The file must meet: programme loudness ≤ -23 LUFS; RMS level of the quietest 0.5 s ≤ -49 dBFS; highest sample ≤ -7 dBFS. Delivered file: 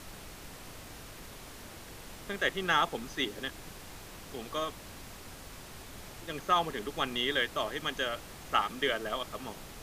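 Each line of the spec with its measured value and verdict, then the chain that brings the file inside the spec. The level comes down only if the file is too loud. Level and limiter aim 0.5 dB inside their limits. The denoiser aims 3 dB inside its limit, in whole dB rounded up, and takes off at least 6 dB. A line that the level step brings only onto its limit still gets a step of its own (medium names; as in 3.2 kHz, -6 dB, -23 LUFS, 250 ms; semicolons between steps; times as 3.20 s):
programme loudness -32.5 LUFS: pass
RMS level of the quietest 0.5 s -47 dBFS: fail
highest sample -12.5 dBFS: pass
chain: noise reduction 6 dB, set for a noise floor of -47 dBFS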